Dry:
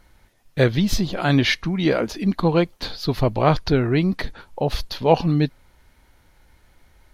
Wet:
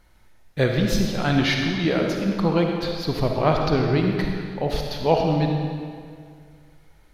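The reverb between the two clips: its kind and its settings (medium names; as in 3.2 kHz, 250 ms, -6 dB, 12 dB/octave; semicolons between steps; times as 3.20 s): algorithmic reverb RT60 2.1 s, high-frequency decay 0.85×, pre-delay 15 ms, DRR 1.5 dB; trim -3.5 dB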